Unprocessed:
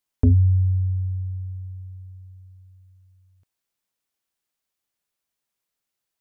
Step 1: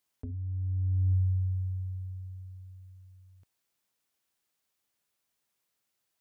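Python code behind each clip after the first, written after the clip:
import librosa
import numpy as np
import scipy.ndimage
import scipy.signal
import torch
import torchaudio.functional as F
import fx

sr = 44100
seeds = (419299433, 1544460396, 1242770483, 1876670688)

y = fx.over_compress(x, sr, threshold_db=-26.0, ratio=-1.0)
y = scipy.signal.sosfilt(scipy.signal.butter(2, 48.0, 'highpass', fs=sr, output='sos'), y)
y = F.gain(torch.from_numpy(y), -3.0).numpy()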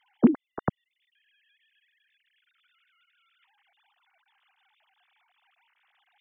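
y = fx.sine_speech(x, sr)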